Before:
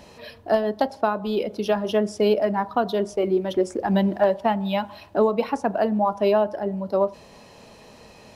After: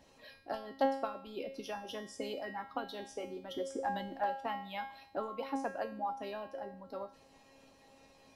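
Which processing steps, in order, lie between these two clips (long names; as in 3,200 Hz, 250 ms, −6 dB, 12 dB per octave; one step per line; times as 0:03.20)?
harmonic and percussive parts rebalanced harmonic −11 dB
tuned comb filter 270 Hz, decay 0.57 s, harmonics all, mix 90%
level +5 dB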